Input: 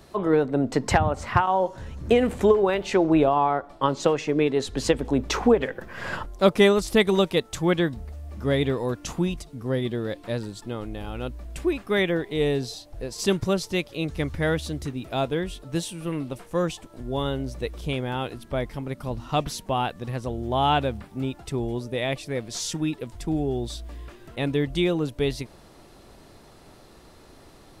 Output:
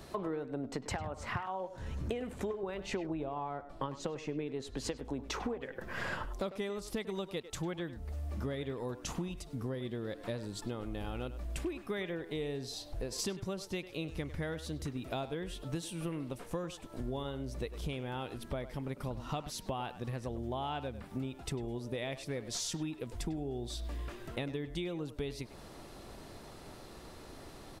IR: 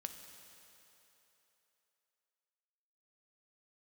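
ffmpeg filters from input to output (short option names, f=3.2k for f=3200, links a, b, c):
-filter_complex "[0:a]asettb=1/sr,asplit=3[a][b][c];[a]atrim=end=2.634[d];[b]atrim=start=2.63:end=4.62,asetpts=PTS-STARTPTS,afade=t=in:d=0.004:c=qsin,afade=t=out:st=1.986:d=0.004:c=qsin,lowshelf=f=200:g=8.5[e];[c]atrim=start=4.616[f];[d][e]acrossfade=d=0.004:c1=hsin:c2=qsin[g];[g][f]acrossfade=d=0.004:c1=qsin:c2=hsin,acompressor=threshold=-34dB:ratio=16,asplit=2[h][i];[i]adelay=100,highpass=300,lowpass=3.4k,asoftclip=type=hard:threshold=-31dB,volume=-12dB[j];[h][j]amix=inputs=2:normalize=0"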